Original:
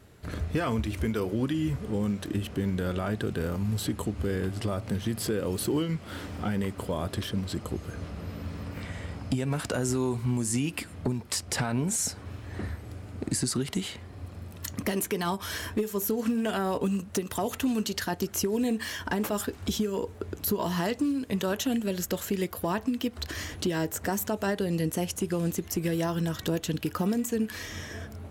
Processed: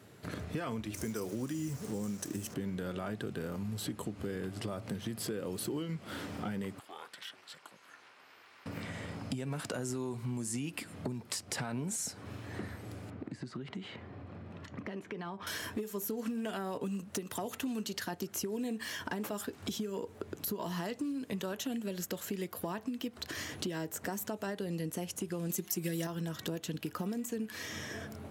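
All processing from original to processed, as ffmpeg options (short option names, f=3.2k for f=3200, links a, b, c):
-filter_complex "[0:a]asettb=1/sr,asplit=3[a][b][c];[a]atrim=end=0.944[d];[b]atrim=start=0.94:end=2.54,asetpts=PTS-STARTPTS,afade=t=in:d=0.004:c=qsin,afade=t=out:st=1.596:d=0.004:c=qsin,highshelf=f=4.7k:t=q:w=3:g=8.5,acrusher=bits=6:mix=0:aa=0.5[e];[c]atrim=start=2.536[f];[d][e]acrossfade=d=0.004:c1=hsin:c2=qsin[g];[g][f]acrossfade=d=0.004:c1=qsin:c2=hsin,asettb=1/sr,asplit=3[h][i][j];[h]atrim=end=6.794[k];[i]atrim=start=6.79:end=8.66,asetpts=PTS-STARTPTS,afade=t=in:d=0.004:c=qsin,afade=t=out:st=1.866:d=0.004:c=qsin,highpass=1.4k,highshelf=f=3.7k:g=-11,aeval=exprs='val(0)*sin(2*PI*180*n/s)':c=same[l];[j]atrim=start=8.656[m];[k][l]acrossfade=d=0.004:c1=hsin:c2=qsin[n];[n][m]acrossfade=d=0.004:c1=qsin:c2=hsin,asettb=1/sr,asplit=3[o][p][q];[o]atrim=end=13.104[r];[p]atrim=start=13.1:end=15.47,asetpts=PTS-STARTPTS,afade=t=in:d=0.004:c=qsin,afade=t=out:st=2.366:d=0.004:c=qsin,acompressor=threshold=-38dB:ratio=2.5:attack=3.2:release=140:knee=1:detection=peak,lowpass=2.5k[s];[q]atrim=start=15.466[t];[r][s]acrossfade=d=0.004:c1=hsin:c2=qsin[u];[u][t]acrossfade=d=0.004:c1=qsin:c2=hsin,asettb=1/sr,asplit=3[v][w][x];[v]atrim=end=25.494[y];[w]atrim=start=25.49:end=26.07,asetpts=PTS-STARTPTS,afade=t=in:d=0.004:c=qsin,afade=t=out:st=0.576:d=0.004:c=qsin,highshelf=f=3.9k:g=10,aecho=1:1:5.5:0.81,atrim=end_sample=25578[z];[x]atrim=start=26.066[aa];[y][z]acrossfade=d=0.004:c1=hsin:c2=qsin[ab];[ab][aa]acrossfade=d=0.004:c1=qsin:c2=hsin,highpass=f=110:w=0.5412,highpass=f=110:w=1.3066,acompressor=threshold=-38dB:ratio=2.5"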